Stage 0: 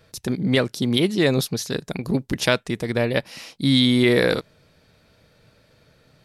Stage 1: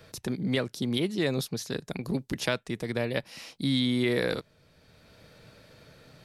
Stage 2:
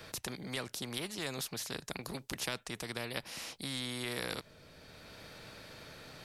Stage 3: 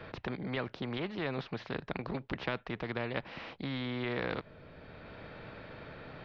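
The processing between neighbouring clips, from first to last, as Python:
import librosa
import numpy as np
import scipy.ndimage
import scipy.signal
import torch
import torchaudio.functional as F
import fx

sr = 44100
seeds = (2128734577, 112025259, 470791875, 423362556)

y1 = fx.band_squash(x, sr, depth_pct=40)
y1 = F.gain(torch.from_numpy(y1), -8.5).numpy()
y2 = fx.spectral_comp(y1, sr, ratio=2.0)
y2 = F.gain(torch.from_numpy(y2), -8.0).numpy()
y3 = scipy.ndimage.gaussian_filter1d(y2, 3.1, mode='constant')
y3 = F.gain(torch.from_numpy(y3), 5.5).numpy()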